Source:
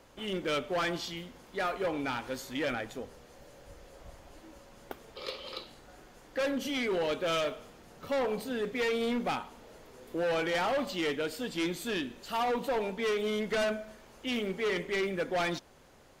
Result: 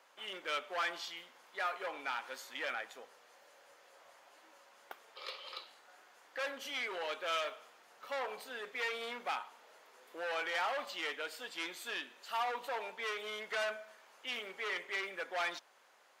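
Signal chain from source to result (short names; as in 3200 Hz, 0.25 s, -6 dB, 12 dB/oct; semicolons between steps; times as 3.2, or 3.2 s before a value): HPF 1000 Hz 12 dB/oct; high shelf 2600 Hz -8 dB; gain +1 dB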